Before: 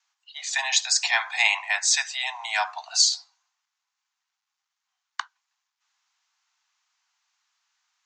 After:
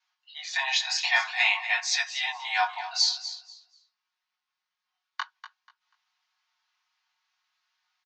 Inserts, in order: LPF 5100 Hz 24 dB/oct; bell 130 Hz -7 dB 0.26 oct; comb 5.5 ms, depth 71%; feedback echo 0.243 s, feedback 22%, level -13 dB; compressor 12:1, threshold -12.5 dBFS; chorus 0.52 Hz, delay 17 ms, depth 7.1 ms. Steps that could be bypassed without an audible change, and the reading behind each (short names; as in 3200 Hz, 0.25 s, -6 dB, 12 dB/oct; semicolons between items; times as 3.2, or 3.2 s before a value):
bell 130 Hz: input band starts at 600 Hz